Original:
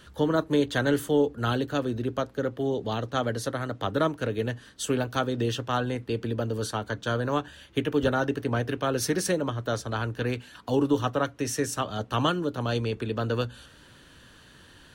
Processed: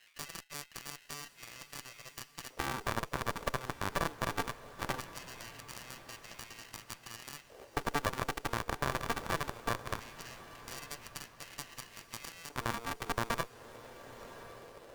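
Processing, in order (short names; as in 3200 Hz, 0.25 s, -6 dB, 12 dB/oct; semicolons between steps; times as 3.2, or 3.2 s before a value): compressor 4:1, threshold -39 dBFS, peak gain reduction 17.5 dB; sample-and-hold 38×; LFO high-pass square 0.2 Hz 470–2300 Hz; added harmonics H 3 -17 dB, 4 -6 dB, 5 -15 dB, 7 -10 dB, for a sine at -20.5 dBFS; on a send: diffused feedback echo 1.105 s, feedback 42%, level -15.5 dB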